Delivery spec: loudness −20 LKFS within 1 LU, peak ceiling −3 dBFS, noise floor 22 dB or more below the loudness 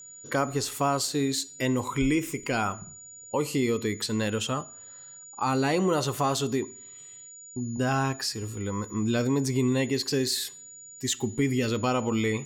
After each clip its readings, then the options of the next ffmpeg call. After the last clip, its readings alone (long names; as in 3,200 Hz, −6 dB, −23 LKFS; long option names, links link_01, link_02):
interfering tone 6,900 Hz; level of the tone −44 dBFS; integrated loudness −27.5 LKFS; sample peak −12.5 dBFS; target loudness −20.0 LKFS
→ -af "bandreject=frequency=6900:width=30"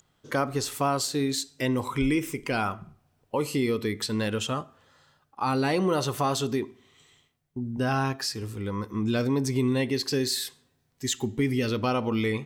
interfering tone none found; integrated loudness −28.0 LKFS; sample peak −13.0 dBFS; target loudness −20.0 LKFS
→ -af "volume=8dB"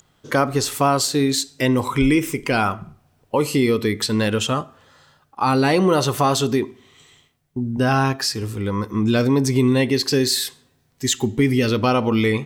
integrated loudness −20.0 LKFS; sample peak −5.0 dBFS; background noise floor −62 dBFS